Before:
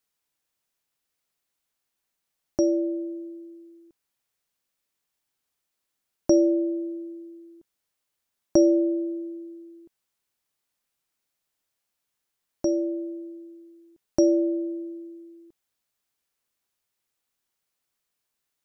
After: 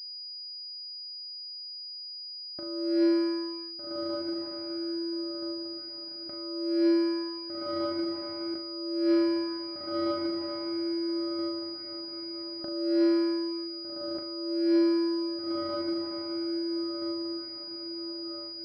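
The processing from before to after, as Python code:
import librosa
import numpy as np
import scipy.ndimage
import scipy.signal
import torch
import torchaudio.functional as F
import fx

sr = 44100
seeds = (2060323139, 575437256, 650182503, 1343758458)

p1 = fx.leveller(x, sr, passes=2)
p2 = fx.low_shelf(p1, sr, hz=120.0, db=-5.0)
p3 = p2 + fx.echo_diffused(p2, sr, ms=1632, feedback_pct=41, wet_db=-14.5, dry=0)
p4 = fx.over_compress(p3, sr, threshold_db=-24.0, ratio=-0.5)
p5 = fx.peak_eq(p4, sr, hz=1700.0, db=8.5, octaves=1.8)
p6 = fx.room_flutter(p5, sr, wall_m=6.7, rt60_s=0.3)
p7 = fx.pwm(p6, sr, carrier_hz=4900.0)
y = p7 * librosa.db_to_amplitude(-4.5)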